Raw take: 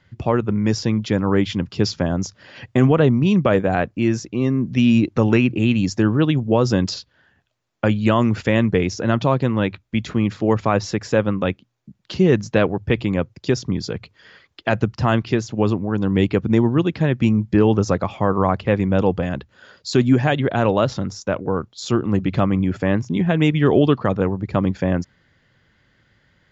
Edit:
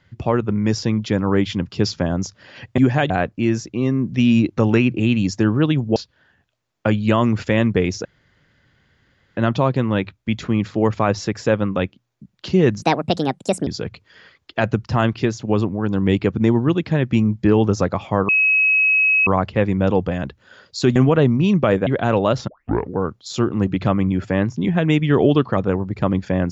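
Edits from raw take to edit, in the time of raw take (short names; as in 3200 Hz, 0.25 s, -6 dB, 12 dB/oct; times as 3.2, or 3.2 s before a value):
2.78–3.69 swap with 20.07–20.39
6.55–6.94 cut
9.03 insert room tone 1.32 s
12.48–13.76 speed 151%
18.38 add tone 2560 Hz -12.5 dBFS 0.98 s
21 tape start 0.45 s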